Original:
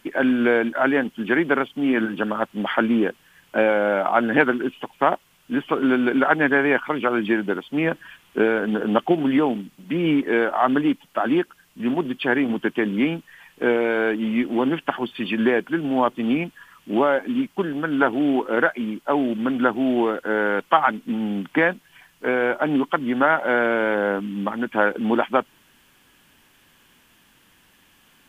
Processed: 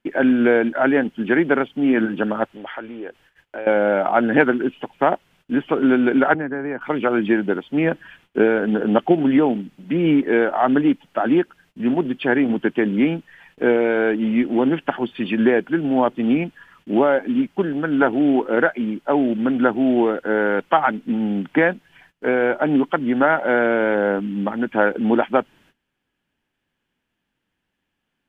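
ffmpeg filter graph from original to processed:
-filter_complex "[0:a]asettb=1/sr,asplit=3[s0][s1][s2];[s0]atrim=end=2.444[s3];[s1]atrim=start=2.44:end=3.67,asetpts=PTS-STARTPTS,afade=t=in:d=0.004:c=qsin,afade=t=out:st=1.226:d=0.004:c=qsin,acompressor=threshold=0.0282:ratio=3:attack=3.2:release=140:knee=1:detection=peak,equalizer=f=200:t=o:w=0.82:g=-12.5[s4];[s2]atrim=start=3.666[s5];[s3][s4]acrossfade=d=0.004:c1=hsin:c2=qsin[s6];[s6][s5]acrossfade=d=0.004:c1=qsin:c2=hsin,asettb=1/sr,asplit=3[s7][s8][s9];[s7]atrim=end=6.344[s10];[s8]atrim=start=6.34:end=6.81,asetpts=PTS-STARTPTS,afade=t=in:d=0.004:c=qsin,afade=t=out:st=0.466:d=0.004:c=qsin,lowpass=1500,acrossover=split=270|1000[s11][s12][s13];[s11]acompressor=threshold=0.02:ratio=4[s14];[s12]acompressor=threshold=0.02:ratio=4[s15];[s13]acompressor=threshold=0.02:ratio=4[s16];[s14][s15][s16]amix=inputs=3:normalize=0[s17];[s9]atrim=start=6.806[s18];[s10][s17]acrossfade=d=0.004:c1=hsin:c2=qsin[s19];[s19][s18]acrossfade=d=0.004:c1=qsin:c2=hsin,lowpass=f=1900:p=1,agate=range=0.1:threshold=0.00178:ratio=16:detection=peak,equalizer=f=1100:w=3.7:g=-6.5,volume=1.5"

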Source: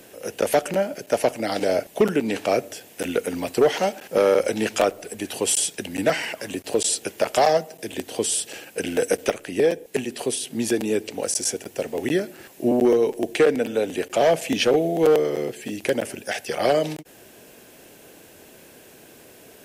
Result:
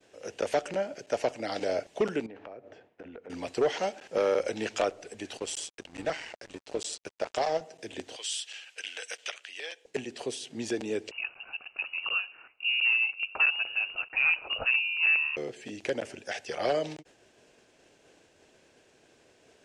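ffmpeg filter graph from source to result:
-filter_complex "[0:a]asettb=1/sr,asplit=3[s0][s1][s2];[s0]atrim=end=2.264[s3];[s1]atrim=start=2.26:end=3.3,asetpts=PTS-STARTPTS,afade=t=in:d=0.004:c=qsin,afade=t=out:st=1.036:d=0.004:c=qsin,lowpass=1500,acompressor=threshold=0.0251:ratio=12:attack=3.2:release=140:knee=1:detection=peak[s4];[s2]atrim=start=3.296[s5];[s3][s4]acrossfade=d=0.004:c1=hsin:c2=qsin[s6];[s6][s5]acrossfade=d=0.004:c1=qsin:c2=hsin,asettb=1/sr,asplit=3[s7][s8][s9];[s7]atrim=end=5.374[s10];[s8]atrim=start=5.37:end=7.61,asetpts=PTS-STARTPTS,afade=t=in:d=0.004:c=qsin,afade=t=out:st=2.236:d=0.004:c=qsin,aeval=exprs='sgn(val(0))*max(abs(val(0))-0.0158,0)':c=same,tremolo=f=160:d=0.462[s11];[s9]atrim=start=7.606[s12];[s10][s11]acrossfade=d=0.004:c1=hsin:c2=qsin[s13];[s13][s12]acrossfade=d=0.004:c1=qsin:c2=hsin,asettb=1/sr,asplit=3[s14][s15][s16];[s14]atrim=end=8.164[s17];[s15]atrim=start=8.16:end=9.85,asetpts=PTS-STARTPTS,afade=t=in:d=0.004:c=qsin,afade=t=out:st=1.686:d=0.004:c=qsin,highpass=1400,equalizer=f=3100:t=o:w=0.66:g=7[s18];[s16]atrim=start=9.846[s19];[s17][s18]acrossfade=d=0.004:c1=hsin:c2=qsin[s20];[s20][s19]acrossfade=d=0.004:c1=qsin:c2=hsin,asettb=1/sr,asplit=3[s21][s22][s23];[s21]atrim=end=11.114[s24];[s22]atrim=start=11.11:end=15.37,asetpts=PTS-STARTPTS,afade=t=in:d=0.004:c=qsin,afade=t=out:st=4.256:d=0.004:c=qsin,highpass=220,lowpass=f=2600:t=q:w=0.5098,lowpass=f=2600:t=q:w=0.6013,lowpass=f=2600:t=q:w=0.9,lowpass=f=2600:t=q:w=2.563,afreqshift=-3100[s25];[s23]atrim=start=15.366[s26];[s24][s25]acrossfade=d=0.004:c1=hsin:c2=qsin[s27];[s27][s26]acrossfade=d=0.004:c1=qsin:c2=hsin,lowpass=f=7300:w=0.5412,lowpass=f=7300:w=1.3066,agate=range=0.0224:threshold=0.00631:ratio=3:detection=peak,equalizer=f=200:t=o:w=1.2:g=-4.5,volume=0.422"

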